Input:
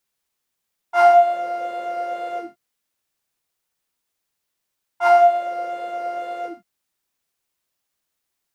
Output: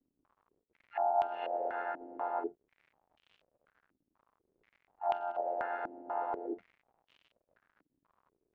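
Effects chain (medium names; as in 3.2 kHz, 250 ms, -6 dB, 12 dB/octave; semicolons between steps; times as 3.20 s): low-pass that closes with the level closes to 430 Hz, closed at -11 dBFS; gate -24 dBFS, range -9 dB; dynamic bell 240 Hz, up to +4 dB, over -40 dBFS, Q 1.4; slow attack 474 ms; reverse; compression 16:1, threshold -35 dBFS, peak gain reduction 13 dB; reverse; AM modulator 86 Hz, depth 65%; harmony voices +3 st -9 dB, +4 st -7 dB, +12 st -12 dB; crackle 140 per s -54 dBFS; step-sequenced low-pass 4.1 Hz 290–3000 Hz; trim +1.5 dB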